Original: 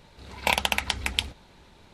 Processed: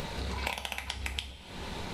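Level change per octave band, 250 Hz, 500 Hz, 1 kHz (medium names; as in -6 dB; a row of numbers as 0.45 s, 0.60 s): -2.0 dB, -5.5 dB, -9.0 dB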